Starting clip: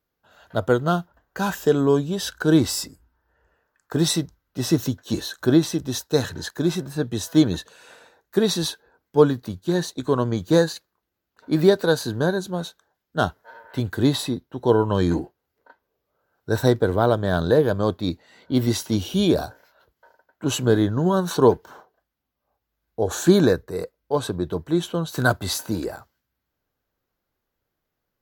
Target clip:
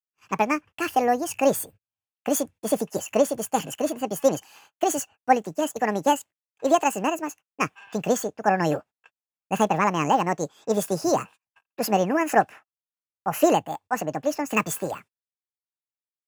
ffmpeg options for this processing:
-af "agate=range=0.02:threshold=0.00224:ratio=16:detection=peak,asetrate=76440,aresample=44100,volume=0.75" -ar 44100 -c:a libvorbis -b:a 192k

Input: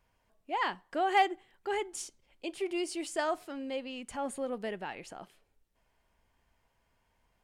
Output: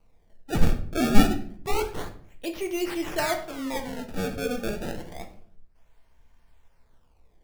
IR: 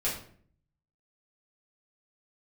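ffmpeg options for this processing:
-filter_complex "[0:a]acrusher=samples=25:mix=1:aa=0.000001:lfo=1:lforange=40:lforate=0.28,lowshelf=f=69:g=10,asplit=2[s0][s1];[1:a]atrim=start_sample=2205[s2];[s1][s2]afir=irnorm=-1:irlink=0,volume=0.398[s3];[s0][s3]amix=inputs=2:normalize=0,volume=1.19"

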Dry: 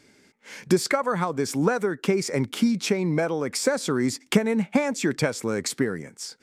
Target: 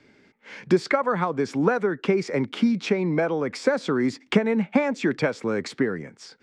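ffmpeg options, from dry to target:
-filter_complex "[0:a]acrossover=split=150|520|1800[s0][s1][s2][s3];[s0]acompressor=threshold=0.00708:ratio=6[s4];[s4][s1][s2][s3]amix=inputs=4:normalize=0,lowpass=3300,volume=1.19"

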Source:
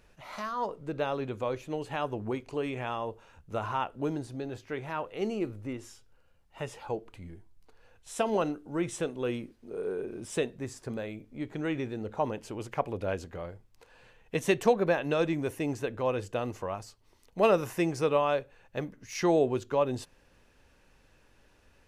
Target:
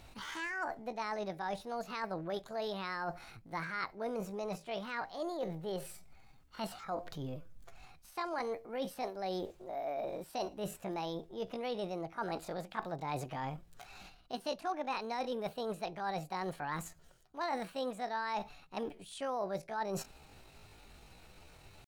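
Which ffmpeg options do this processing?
-filter_complex "[0:a]acrossover=split=5700[s0][s1];[s1]acompressor=threshold=0.00112:ratio=4:attack=1:release=60[s2];[s0][s2]amix=inputs=2:normalize=0,asetrate=68011,aresample=44100,atempo=0.64842,areverse,acompressor=threshold=0.00794:ratio=5,areverse,volume=1.88"

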